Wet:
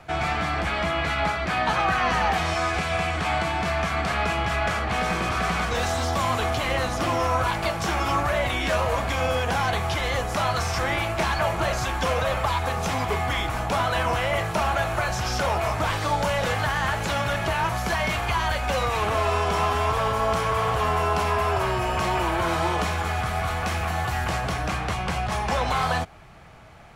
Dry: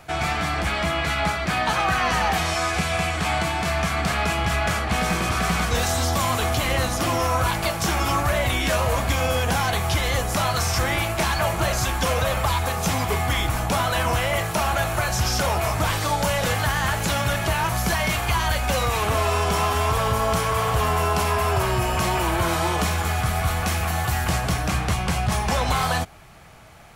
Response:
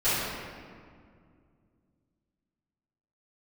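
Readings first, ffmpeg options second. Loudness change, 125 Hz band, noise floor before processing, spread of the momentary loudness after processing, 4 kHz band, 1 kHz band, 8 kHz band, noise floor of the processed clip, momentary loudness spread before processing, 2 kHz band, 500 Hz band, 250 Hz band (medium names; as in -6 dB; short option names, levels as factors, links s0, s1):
-2.0 dB, -4.0 dB, -27 dBFS, 3 LU, -3.5 dB, -0.5 dB, -8.0 dB, -29 dBFS, 2 LU, -1.5 dB, -0.5 dB, -3.0 dB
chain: -filter_complex "[0:a]aemphasis=mode=reproduction:type=50kf,acrossover=split=340[s0][s1];[s0]alimiter=limit=0.0631:level=0:latency=1:release=165[s2];[s2][s1]amix=inputs=2:normalize=0"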